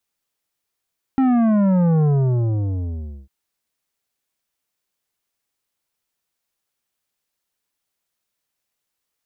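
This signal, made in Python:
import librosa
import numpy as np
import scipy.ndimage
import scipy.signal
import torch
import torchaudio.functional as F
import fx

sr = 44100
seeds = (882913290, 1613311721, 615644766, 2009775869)

y = fx.sub_drop(sr, level_db=-14.5, start_hz=270.0, length_s=2.1, drive_db=10.5, fade_s=1.24, end_hz=65.0)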